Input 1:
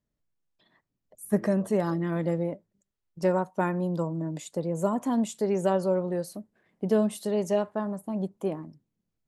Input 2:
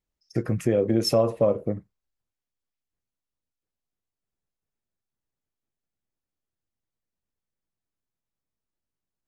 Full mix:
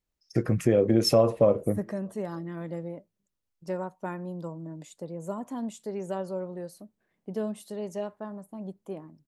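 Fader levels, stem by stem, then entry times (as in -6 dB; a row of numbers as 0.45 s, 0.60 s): -8.0 dB, +0.5 dB; 0.45 s, 0.00 s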